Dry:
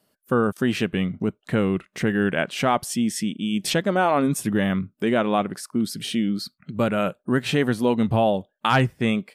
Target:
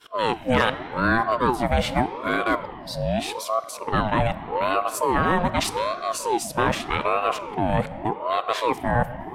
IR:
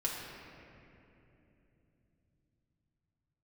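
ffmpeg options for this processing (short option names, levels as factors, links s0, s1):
-filter_complex "[0:a]areverse,asplit=2[s0][s1];[1:a]atrim=start_sample=2205[s2];[s1][s2]afir=irnorm=-1:irlink=0,volume=0.251[s3];[s0][s3]amix=inputs=2:normalize=0,aeval=exprs='val(0)*sin(2*PI*630*n/s+630*0.45/0.83*sin(2*PI*0.83*n/s))':c=same"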